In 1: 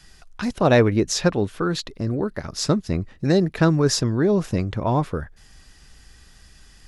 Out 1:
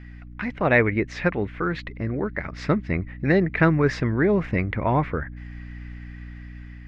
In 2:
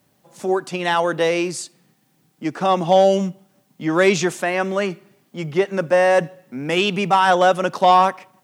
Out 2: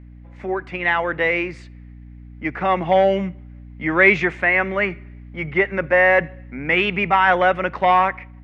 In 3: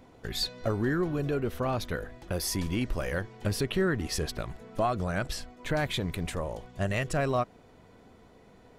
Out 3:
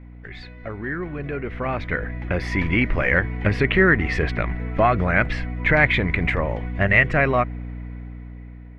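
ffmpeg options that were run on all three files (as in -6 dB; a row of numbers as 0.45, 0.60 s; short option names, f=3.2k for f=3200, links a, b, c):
-af "aeval=exprs='val(0)+0.0178*(sin(2*PI*60*n/s)+sin(2*PI*2*60*n/s)/2+sin(2*PI*3*60*n/s)/3+sin(2*PI*4*60*n/s)/4+sin(2*PI*5*60*n/s)/5)':c=same,dynaudnorm=f=740:g=5:m=15.5dB,lowpass=f=2.1k:t=q:w=5.4,volume=-5dB"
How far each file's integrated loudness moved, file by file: -2.0, 0.0, +10.0 LU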